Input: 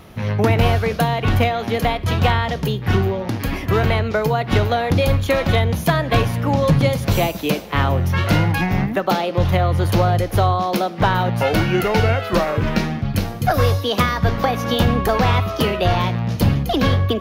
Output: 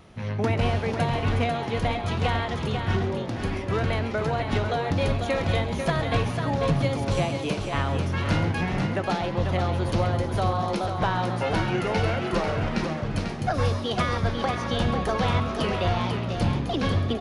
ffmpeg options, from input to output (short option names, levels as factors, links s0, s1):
-filter_complex "[0:a]asplit=2[s0][s1];[s1]asplit=6[s2][s3][s4][s5][s6][s7];[s2]adelay=135,afreqshift=140,volume=0.224[s8];[s3]adelay=270,afreqshift=280,volume=0.126[s9];[s4]adelay=405,afreqshift=420,volume=0.07[s10];[s5]adelay=540,afreqshift=560,volume=0.0394[s11];[s6]adelay=675,afreqshift=700,volume=0.0221[s12];[s7]adelay=810,afreqshift=840,volume=0.0123[s13];[s8][s9][s10][s11][s12][s13]amix=inputs=6:normalize=0[s14];[s0][s14]amix=inputs=2:normalize=0,aresample=22050,aresample=44100,asplit=2[s15][s16];[s16]aecho=0:1:494:0.501[s17];[s15][s17]amix=inputs=2:normalize=0,volume=0.376"